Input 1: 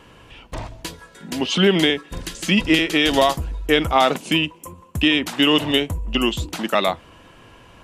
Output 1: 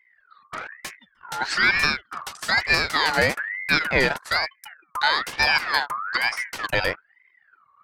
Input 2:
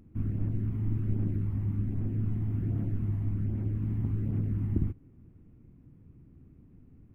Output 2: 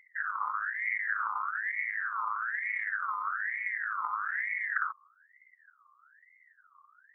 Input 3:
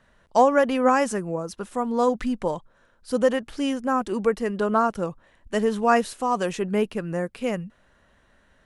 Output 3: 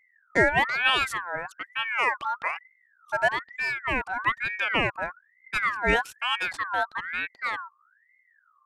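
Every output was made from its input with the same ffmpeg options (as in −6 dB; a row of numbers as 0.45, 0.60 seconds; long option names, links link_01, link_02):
-af "aeval=exprs='val(0)+0.00251*(sin(2*PI*60*n/s)+sin(2*PI*2*60*n/s)/2+sin(2*PI*3*60*n/s)/3+sin(2*PI*4*60*n/s)/4+sin(2*PI*5*60*n/s)/5)':channel_layout=same,anlmdn=3.98,aeval=exprs='val(0)*sin(2*PI*1600*n/s+1600*0.3/1.1*sin(2*PI*1.1*n/s))':channel_layout=same,volume=-1dB"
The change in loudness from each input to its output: −3.0, −0.5, −2.0 LU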